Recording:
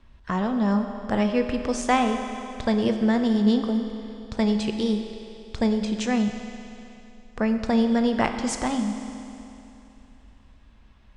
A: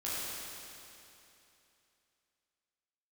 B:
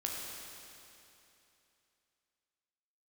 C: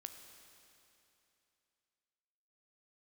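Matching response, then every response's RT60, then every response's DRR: C; 2.9, 2.9, 2.9 s; -10.0, -2.5, 6.0 dB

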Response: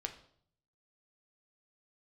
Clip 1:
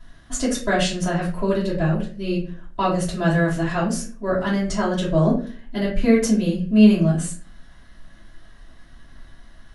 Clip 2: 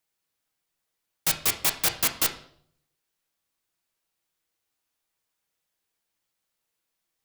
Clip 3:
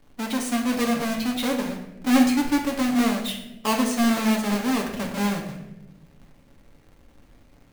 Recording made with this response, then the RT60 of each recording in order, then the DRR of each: 2; 0.40, 0.60, 0.95 s; -8.0, 4.0, -0.5 dB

